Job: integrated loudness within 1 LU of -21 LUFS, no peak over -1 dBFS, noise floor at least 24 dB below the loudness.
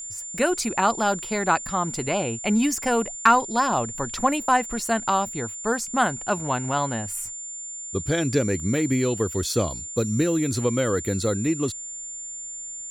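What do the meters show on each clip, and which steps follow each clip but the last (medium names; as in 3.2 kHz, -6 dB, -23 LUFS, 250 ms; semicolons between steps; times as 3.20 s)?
steady tone 7.2 kHz; tone level -33 dBFS; loudness -24.5 LUFS; peak level -5.5 dBFS; loudness target -21.0 LUFS
-> band-stop 7.2 kHz, Q 30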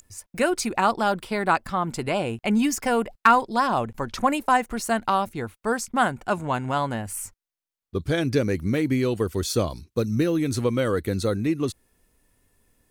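steady tone not found; loudness -24.5 LUFS; peak level -6.0 dBFS; loudness target -21.0 LUFS
-> trim +3.5 dB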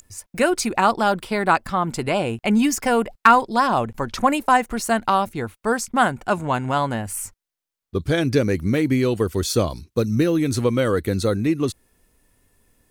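loudness -21.0 LUFS; peak level -2.5 dBFS; noise floor -86 dBFS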